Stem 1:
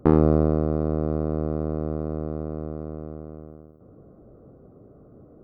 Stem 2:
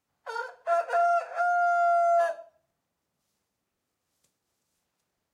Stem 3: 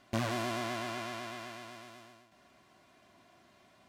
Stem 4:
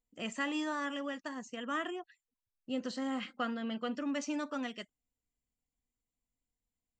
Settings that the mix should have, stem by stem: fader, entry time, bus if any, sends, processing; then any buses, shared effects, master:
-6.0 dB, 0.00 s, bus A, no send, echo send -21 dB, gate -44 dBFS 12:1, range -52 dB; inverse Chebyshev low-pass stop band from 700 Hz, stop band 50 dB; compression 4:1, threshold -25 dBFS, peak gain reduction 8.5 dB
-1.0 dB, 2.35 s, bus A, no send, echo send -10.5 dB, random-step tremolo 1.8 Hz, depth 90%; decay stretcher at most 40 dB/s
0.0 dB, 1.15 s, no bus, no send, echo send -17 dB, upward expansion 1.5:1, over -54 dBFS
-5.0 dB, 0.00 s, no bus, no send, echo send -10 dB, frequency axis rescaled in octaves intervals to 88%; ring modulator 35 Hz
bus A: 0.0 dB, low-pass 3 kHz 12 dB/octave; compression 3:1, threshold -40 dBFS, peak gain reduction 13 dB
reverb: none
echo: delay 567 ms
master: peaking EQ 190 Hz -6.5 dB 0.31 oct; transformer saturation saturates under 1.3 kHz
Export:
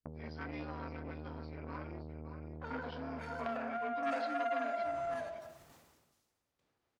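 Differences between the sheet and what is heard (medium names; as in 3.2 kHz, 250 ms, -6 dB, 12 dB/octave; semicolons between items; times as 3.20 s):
stem 3: muted; stem 4: missing ring modulator 35 Hz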